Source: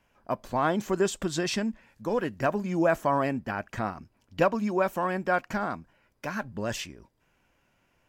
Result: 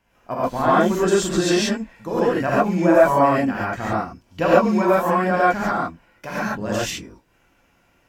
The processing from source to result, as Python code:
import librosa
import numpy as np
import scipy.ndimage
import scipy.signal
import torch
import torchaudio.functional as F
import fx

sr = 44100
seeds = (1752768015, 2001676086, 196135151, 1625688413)

y = fx.rev_gated(x, sr, seeds[0], gate_ms=160, shape='rising', drr_db=-8.0)